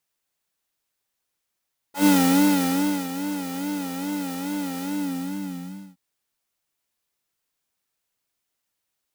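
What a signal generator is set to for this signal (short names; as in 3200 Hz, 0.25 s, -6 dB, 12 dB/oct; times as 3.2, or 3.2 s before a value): synth patch with vibrato F#3, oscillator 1 triangle, oscillator 2 square, interval +7 st, oscillator 2 level -7 dB, noise -10 dB, filter highpass, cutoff 170 Hz, Q 2.5, filter envelope 2.5 oct, filter decay 0.08 s, attack 0.121 s, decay 1.03 s, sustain -13 dB, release 1.14 s, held 2.88 s, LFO 2.4 Hz, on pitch 98 cents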